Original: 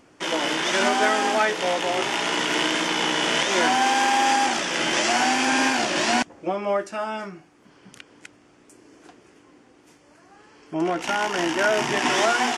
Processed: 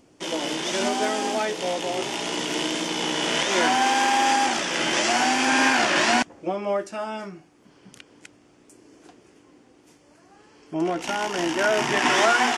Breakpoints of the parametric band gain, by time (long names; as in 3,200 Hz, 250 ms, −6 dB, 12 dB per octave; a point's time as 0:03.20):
parametric band 1,500 Hz 1.7 octaves
0:02.89 −9.5 dB
0:03.56 −1 dB
0:05.35 −1 dB
0:05.92 +7 dB
0:06.47 −4.5 dB
0:11.41 −4.5 dB
0:12.02 +3 dB